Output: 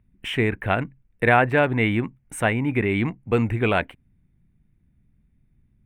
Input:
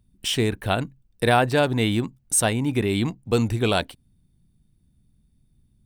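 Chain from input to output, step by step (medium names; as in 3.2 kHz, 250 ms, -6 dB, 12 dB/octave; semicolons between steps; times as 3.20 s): resonant high shelf 3.2 kHz -14 dB, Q 3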